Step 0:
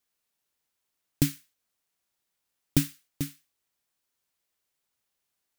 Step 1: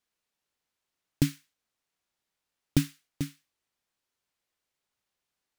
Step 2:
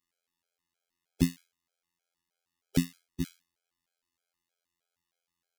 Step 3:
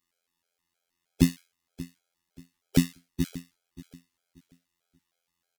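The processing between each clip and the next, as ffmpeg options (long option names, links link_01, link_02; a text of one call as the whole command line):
ffmpeg -i in.wav -af "highshelf=frequency=8900:gain=-11.5" out.wav
ffmpeg -i in.wav -af "afftfilt=real='hypot(re,im)*cos(PI*b)':imag='0':win_size=2048:overlap=0.75,afftfilt=real='re*gt(sin(2*PI*3.2*pts/sr)*(1-2*mod(floor(b*sr/1024/430),2)),0)':imag='im*gt(sin(2*PI*3.2*pts/sr)*(1-2*mod(floor(b*sr/1024/430),2)),0)':win_size=1024:overlap=0.75,volume=4.5dB" out.wav
ffmpeg -i in.wav -af "aecho=1:1:582|1164|1746:0.133|0.0373|0.0105,volume=5dB" -ar 48000 -c:a aac -b:a 96k out.aac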